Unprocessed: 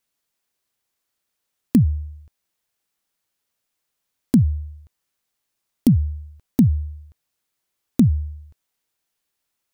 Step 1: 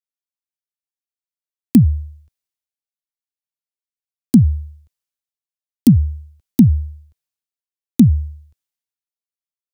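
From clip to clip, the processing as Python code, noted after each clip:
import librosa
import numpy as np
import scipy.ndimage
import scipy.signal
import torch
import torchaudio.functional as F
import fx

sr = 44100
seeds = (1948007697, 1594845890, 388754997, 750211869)

y = fx.band_widen(x, sr, depth_pct=70)
y = y * librosa.db_to_amplitude(1.0)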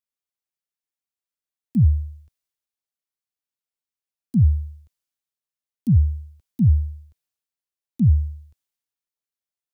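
y = fx.auto_swell(x, sr, attack_ms=105.0)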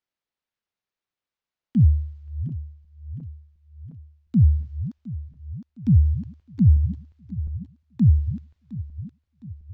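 y = fx.reverse_delay_fb(x, sr, ms=356, feedback_pct=71, wet_db=-13.5)
y = np.interp(np.arange(len(y)), np.arange(len(y))[::4], y[::4])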